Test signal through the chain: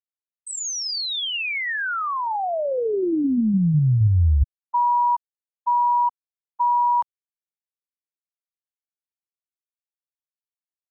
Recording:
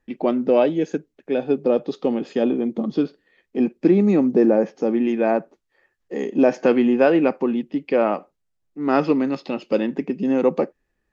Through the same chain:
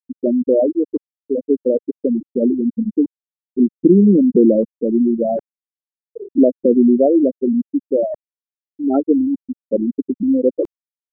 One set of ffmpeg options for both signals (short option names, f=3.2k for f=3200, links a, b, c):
-af "afftfilt=real='re*gte(hypot(re,im),0.562)':imag='im*gte(hypot(re,im),0.562)':win_size=1024:overlap=0.75,areverse,acompressor=mode=upward:threshold=-23dB:ratio=2.5,areverse,lowshelf=f=290:g=10.5"